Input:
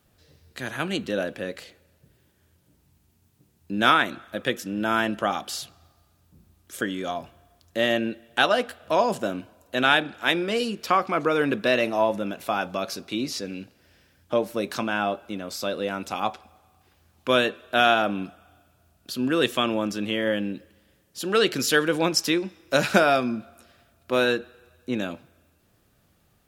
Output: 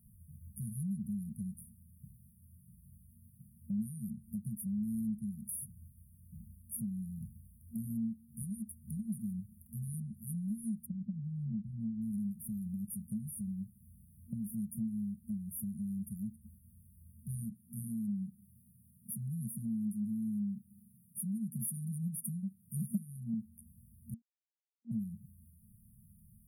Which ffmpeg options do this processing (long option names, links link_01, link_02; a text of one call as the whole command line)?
ffmpeg -i in.wav -filter_complex "[0:a]asplit=3[link_01][link_02][link_03];[link_01]afade=type=out:start_time=10.85:duration=0.02[link_04];[link_02]lowpass=2200,afade=type=in:start_time=10.85:duration=0.02,afade=type=out:start_time=12.01:duration=0.02[link_05];[link_03]afade=type=in:start_time=12.01:duration=0.02[link_06];[link_04][link_05][link_06]amix=inputs=3:normalize=0,asettb=1/sr,asplit=3[link_07][link_08][link_09];[link_07]atrim=end=17.504[link_10];[link_08]atrim=start=17.5:end=23.34,asetpts=PTS-STARTPTS,afade=type=in:duration=0.004:curve=qsin,afade=type=out:start_time=5.836:duration=0.004:curve=qsin,highpass=frequency=110:width=0.5412,highpass=frequency=110:width=1.3066[link_11];[link_09]atrim=start=23.336[link_12];[link_10][link_11]acrossfade=duration=0.004:curve1=hsin:curve2=qsin[link_13];[link_13][link_12]acrossfade=duration=0.004:curve1=qsin:curve2=hsin,asplit=3[link_14][link_15][link_16];[link_14]atrim=end=24.14,asetpts=PTS-STARTPTS,afade=type=out:start_time=24.136:duration=0.004:curve=hsin[link_17];[link_15]atrim=start=24.14:end=24.91,asetpts=PTS-STARTPTS,volume=0[link_18];[link_16]atrim=start=24.91,asetpts=PTS-STARTPTS,afade=type=in:duration=0.004:curve=hsin[link_19];[link_17][link_18][link_19]concat=n=3:v=0:a=1,afftfilt=real='re*(1-between(b*sr/4096,230,9200))':imag='im*(1-between(b*sr/4096,230,9200))':win_size=4096:overlap=0.75,acrossover=split=400 7100:gain=0.251 1 0.178[link_20][link_21][link_22];[link_20][link_21][link_22]amix=inputs=3:normalize=0,acompressor=threshold=-56dB:ratio=2.5,volume=17dB" out.wav